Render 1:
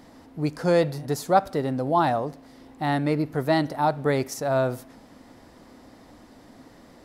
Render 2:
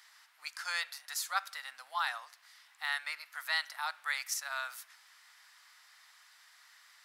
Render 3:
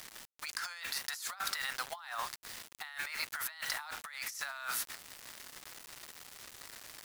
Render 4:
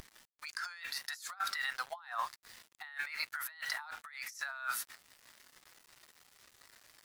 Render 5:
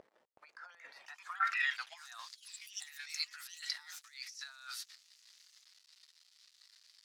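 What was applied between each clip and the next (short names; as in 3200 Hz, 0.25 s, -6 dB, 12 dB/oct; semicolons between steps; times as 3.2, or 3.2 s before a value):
inverse Chebyshev high-pass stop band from 400 Hz, stop band 60 dB
bit-crush 9-bit; negative-ratio compressor -47 dBFS, ratio -1; gain +5.5 dB
spectral expander 1.5:1; gain -2.5 dB
band-pass sweep 530 Hz -> 4500 Hz, 0.86–2.19; echoes that change speed 0.373 s, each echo +5 st, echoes 3, each echo -6 dB; gain +4.5 dB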